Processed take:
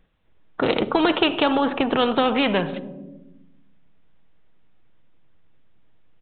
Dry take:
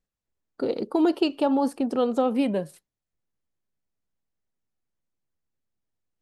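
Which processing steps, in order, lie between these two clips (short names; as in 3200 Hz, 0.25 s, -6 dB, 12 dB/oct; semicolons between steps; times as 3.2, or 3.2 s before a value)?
downsampling 8000 Hz; shoebox room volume 2900 m³, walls furnished, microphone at 0.57 m; spectral compressor 2:1; gain +6 dB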